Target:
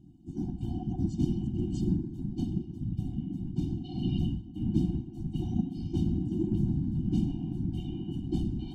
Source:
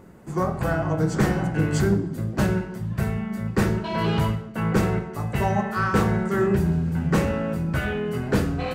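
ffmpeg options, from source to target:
ffmpeg -i in.wav -filter_complex "[0:a]asuperstop=centerf=1300:order=20:qfactor=0.63,highshelf=frequency=5800:gain=-4.5,asettb=1/sr,asplit=3[link_01][link_02][link_03];[link_01]atrim=end=1.964[link_04];[link_02]atrim=start=1.96:end=3.98,asetpts=PTS-STARTPTS,afade=type=in:duration=0.004:curve=qsin,afade=type=out:start_time=2.016:duration=0.004:curve=qsin,acompressor=threshold=-22dB:ratio=2[link_05];[link_03]atrim=start=3.976[link_06];[link_04][link_05]acrossfade=duration=0.004:curve1=hsin:curve2=qsin[link_07];[link_07][link_06]acrossfade=duration=0.004:curve1=qsin:curve2=hsin,aemphasis=mode=reproduction:type=50fm,bandreject=frequency=50:width_type=h:width=6,bandreject=frequency=100:width_type=h:width=6,bandreject=frequency=150:width_type=h:width=6,afftfilt=real='hypot(re,im)*cos(2*PI*random(0))':imag='hypot(re,im)*sin(2*PI*random(1))':win_size=512:overlap=0.75,afftfilt=real='re*eq(mod(floor(b*sr/1024/350),2),0)':imag='im*eq(mod(floor(b*sr/1024/350),2),0)':win_size=1024:overlap=0.75" out.wav

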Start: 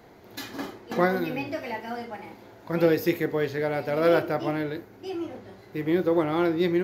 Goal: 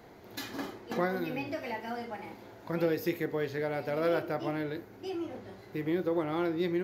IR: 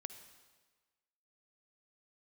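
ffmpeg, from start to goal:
-af "acompressor=threshold=-35dB:ratio=1.5,volume=-1.5dB"

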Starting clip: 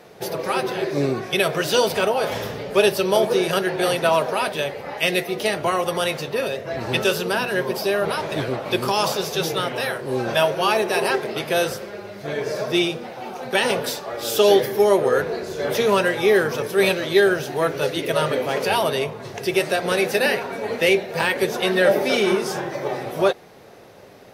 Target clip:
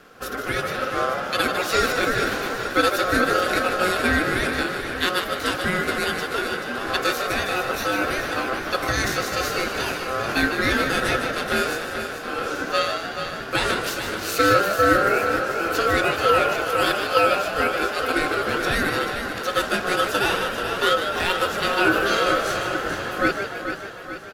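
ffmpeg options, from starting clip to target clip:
ffmpeg -i in.wav -filter_complex "[0:a]asplit=2[link_01][link_02];[link_02]aecho=0:1:433|866|1299|1732|2165|2598|3031:0.376|0.21|0.118|0.066|0.037|0.0207|0.0116[link_03];[link_01][link_03]amix=inputs=2:normalize=0,aeval=exprs='val(0)*sin(2*PI*910*n/s)':channel_layout=same,asplit=2[link_04][link_05];[link_05]asplit=6[link_06][link_07][link_08][link_09][link_10][link_11];[link_06]adelay=152,afreqshift=79,volume=-8dB[link_12];[link_07]adelay=304,afreqshift=158,volume=-14.4dB[link_13];[link_08]adelay=456,afreqshift=237,volume=-20.8dB[link_14];[link_09]adelay=608,afreqshift=316,volume=-27.1dB[link_15];[link_10]adelay=760,afreqshift=395,volume=-33.5dB[link_16];[link_11]adelay=912,afreqshift=474,volume=-39.9dB[link_17];[link_12][link_13][link_14][link_15][link_16][link_17]amix=inputs=6:normalize=0[link_18];[link_04][link_18]amix=inputs=2:normalize=0" out.wav

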